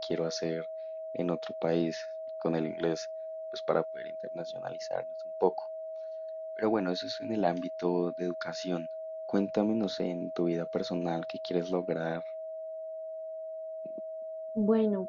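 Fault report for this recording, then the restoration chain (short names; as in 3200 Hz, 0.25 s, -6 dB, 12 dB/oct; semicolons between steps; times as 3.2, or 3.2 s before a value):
tone 640 Hz -37 dBFS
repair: notch 640 Hz, Q 30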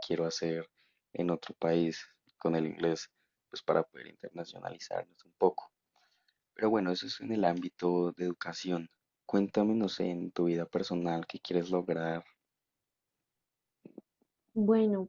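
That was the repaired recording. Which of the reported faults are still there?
none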